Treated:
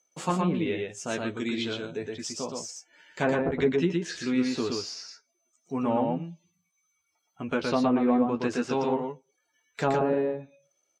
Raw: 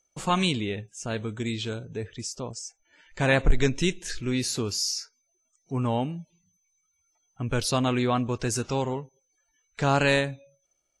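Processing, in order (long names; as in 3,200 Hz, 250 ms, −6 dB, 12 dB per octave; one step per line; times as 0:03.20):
running median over 3 samples
high-pass filter 200 Hz 12 dB per octave
treble cut that deepens with the level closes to 570 Hz, closed at −20 dBFS
double-tracking delay 12 ms −6 dB
single-tap delay 118 ms −3 dB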